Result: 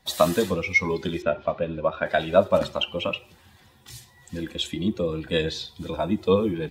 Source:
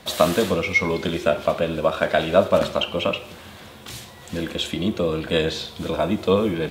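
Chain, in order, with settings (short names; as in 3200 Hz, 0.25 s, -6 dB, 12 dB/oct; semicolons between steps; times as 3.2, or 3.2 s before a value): per-bin expansion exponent 1.5; 1.22–2.06 air absorption 220 m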